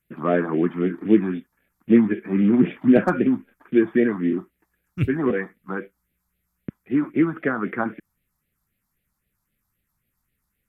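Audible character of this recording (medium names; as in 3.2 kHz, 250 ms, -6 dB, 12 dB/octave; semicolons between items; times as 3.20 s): phasing stages 4, 3.8 Hz, lowest notch 450–1000 Hz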